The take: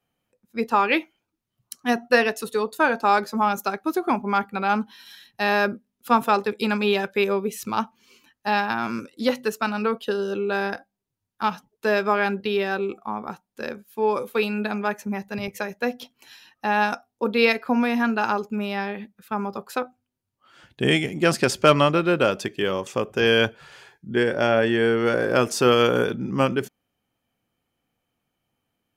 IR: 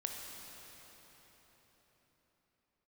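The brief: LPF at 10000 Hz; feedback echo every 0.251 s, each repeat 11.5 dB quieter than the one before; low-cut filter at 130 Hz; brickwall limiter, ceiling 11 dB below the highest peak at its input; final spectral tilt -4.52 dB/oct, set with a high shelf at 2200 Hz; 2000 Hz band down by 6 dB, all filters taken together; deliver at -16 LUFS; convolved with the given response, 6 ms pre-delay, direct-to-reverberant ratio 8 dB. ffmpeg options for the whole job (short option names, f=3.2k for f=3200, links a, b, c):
-filter_complex "[0:a]highpass=130,lowpass=10k,equalizer=f=2k:t=o:g=-5.5,highshelf=f=2.2k:g=-5,alimiter=limit=-16dB:level=0:latency=1,aecho=1:1:251|502|753:0.266|0.0718|0.0194,asplit=2[a][b];[1:a]atrim=start_sample=2205,adelay=6[c];[b][c]afir=irnorm=-1:irlink=0,volume=-8.5dB[d];[a][d]amix=inputs=2:normalize=0,volume=11.5dB"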